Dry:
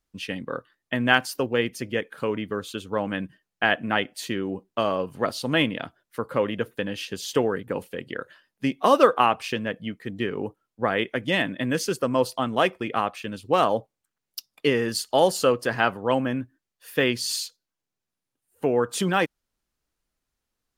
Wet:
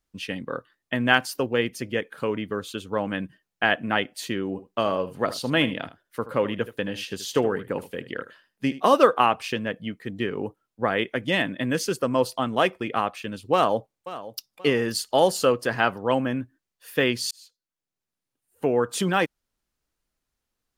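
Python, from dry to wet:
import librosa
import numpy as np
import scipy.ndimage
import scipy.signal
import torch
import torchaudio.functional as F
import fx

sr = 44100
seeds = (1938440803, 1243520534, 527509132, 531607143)

y = fx.echo_single(x, sr, ms=77, db=-15.0, at=(4.53, 8.94), fade=0.02)
y = fx.echo_throw(y, sr, start_s=13.53, length_s=0.99, ms=530, feedback_pct=35, wet_db=-15.0)
y = fx.edit(y, sr, fx.fade_in_span(start_s=17.31, length_s=1.34, curve='qsin'), tone=tone)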